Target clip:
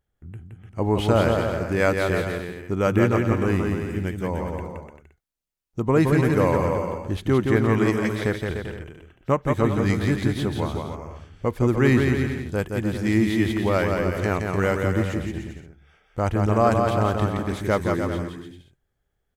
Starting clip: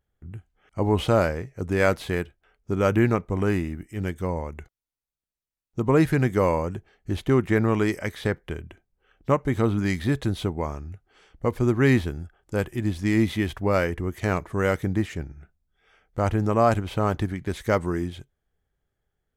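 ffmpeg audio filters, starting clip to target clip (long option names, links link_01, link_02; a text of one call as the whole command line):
ffmpeg -i in.wav -af "aecho=1:1:170|297.5|393.1|464.8|518.6:0.631|0.398|0.251|0.158|0.1" out.wav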